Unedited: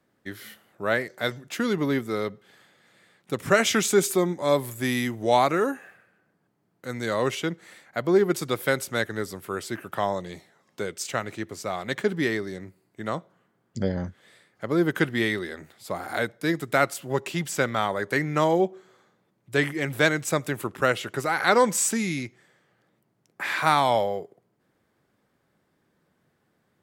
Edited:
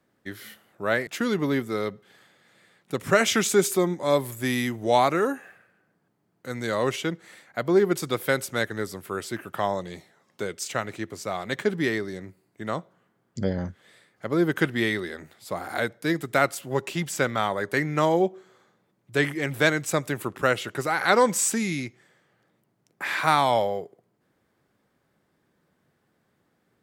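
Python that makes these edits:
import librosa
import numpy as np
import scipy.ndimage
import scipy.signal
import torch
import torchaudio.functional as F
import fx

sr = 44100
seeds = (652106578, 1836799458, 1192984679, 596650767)

y = fx.edit(x, sr, fx.cut(start_s=1.07, length_s=0.39), tone=tone)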